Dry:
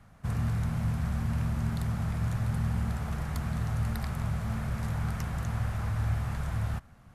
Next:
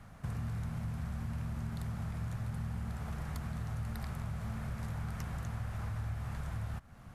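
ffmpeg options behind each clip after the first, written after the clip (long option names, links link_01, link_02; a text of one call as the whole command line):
ffmpeg -i in.wav -af "acompressor=threshold=-42dB:ratio=3,volume=3dB" out.wav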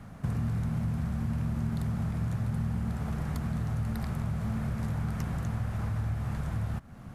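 ffmpeg -i in.wav -af "equalizer=frequency=240:width_type=o:width=2.4:gain=7.5,volume=3dB" out.wav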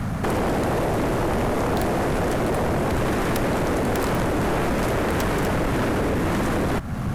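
ffmpeg -i in.wav -af "aeval=exprs='0.112*sin(PI/2*7.08*val(0)/0.112)':channel_layout=same" out.wav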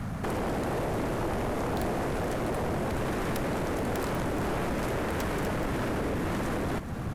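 ffmpeg -i in.wav -af "aecho=1:1:427:0.251,volume=-8dB" out.wav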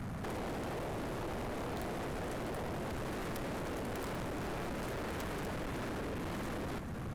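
ffmpeg -i in.wav -af "asoftclip=type=tanh:threshold=-35dB,volume=-2.5dB" out.wav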